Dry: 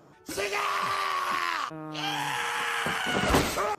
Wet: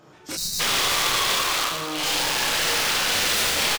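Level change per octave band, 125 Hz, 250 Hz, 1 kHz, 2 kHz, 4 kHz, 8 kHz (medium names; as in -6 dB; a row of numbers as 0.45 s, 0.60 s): -2.5 dB, -1.5 dB, +1.0 dB, +5.0 dB, +12.0 dB, +14.5 dB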